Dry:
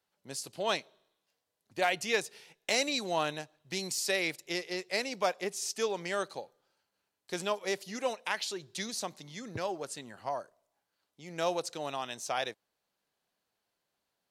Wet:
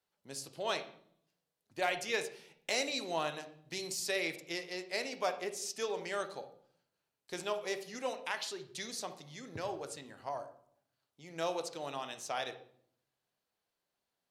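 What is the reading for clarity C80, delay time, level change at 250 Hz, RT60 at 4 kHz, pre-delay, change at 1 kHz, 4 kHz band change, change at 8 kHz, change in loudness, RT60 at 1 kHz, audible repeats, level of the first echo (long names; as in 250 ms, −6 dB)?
15.5 dB, no echo audible, −5.0 dB, 0.45 s, 12 ms, −4.0 dB, −4.0 dB, −4.5 dB, −4.0 dB, 0.55 s, no echo audible, no echo audible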